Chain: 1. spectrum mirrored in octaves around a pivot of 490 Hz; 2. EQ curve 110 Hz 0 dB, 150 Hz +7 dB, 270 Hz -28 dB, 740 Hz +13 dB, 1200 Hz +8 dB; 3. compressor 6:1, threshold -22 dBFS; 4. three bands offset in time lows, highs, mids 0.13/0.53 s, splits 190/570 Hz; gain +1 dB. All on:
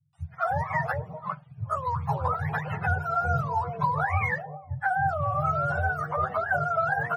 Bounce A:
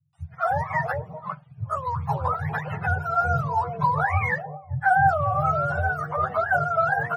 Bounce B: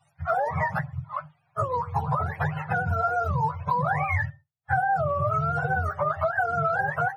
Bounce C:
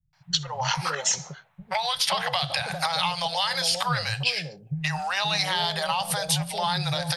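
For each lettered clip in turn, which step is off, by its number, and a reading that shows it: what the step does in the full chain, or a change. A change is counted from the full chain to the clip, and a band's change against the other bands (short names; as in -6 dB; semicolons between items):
3, mean gain reduction 2.0 dB; 4, echo-to-direct 24.5 dB to none; 1, 250 Hz band +4.0 dB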